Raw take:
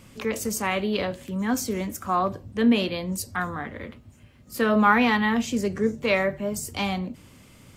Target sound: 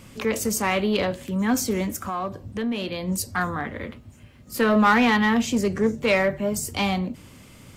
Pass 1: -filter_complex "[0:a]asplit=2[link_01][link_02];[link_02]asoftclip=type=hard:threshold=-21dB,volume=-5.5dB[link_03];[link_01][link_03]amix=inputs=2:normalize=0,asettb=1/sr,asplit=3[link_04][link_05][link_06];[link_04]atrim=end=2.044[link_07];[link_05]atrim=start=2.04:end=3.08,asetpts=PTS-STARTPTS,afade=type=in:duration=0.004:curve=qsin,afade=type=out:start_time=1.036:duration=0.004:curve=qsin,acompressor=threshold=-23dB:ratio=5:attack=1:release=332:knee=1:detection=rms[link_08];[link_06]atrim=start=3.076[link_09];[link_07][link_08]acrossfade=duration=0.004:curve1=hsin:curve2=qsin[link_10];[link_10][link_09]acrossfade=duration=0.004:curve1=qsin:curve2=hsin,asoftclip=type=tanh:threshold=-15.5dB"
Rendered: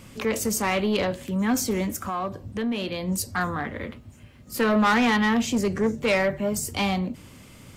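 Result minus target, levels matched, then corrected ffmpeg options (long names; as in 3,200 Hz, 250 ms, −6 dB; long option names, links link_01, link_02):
soft clipping: distortion +9 dB
-filter_complex "[0:a]asplit=2[link_01][link_02];[link_02]asoftclip=type=hard:threshold=-21dB,volume=-5.5dB[link_03];[link_01][link_03]amix=inputs=2:normalize=0,asettb=1/sr,asplit=3[link_04][link_05][link_06];[link_04]atrim=end=2.044[link_07];[link_05]atrim=start=2.04:end=3.08,asetpts=PTS-STARTPTS,afade=type=in:duration=0.004:curve=qsin,afade=type=out:start_time=1.036:duration=0.004:curve=qsin,acompressor=threshold=-23dB:ratio=5:attack=1:release=332:knee=1:detection=rms[link_08];[link_06]atrim=start=3.076[link_09];[link_07][link_08]acrossfade=duration=0.004:curve1=hsin:curve2=qsin[link_10];[link_10][link_09]acrossfade=duration=0.004:curve1=qsin:curve2=hsin,asoftclip=type=tanh:threshold=-8.5dB"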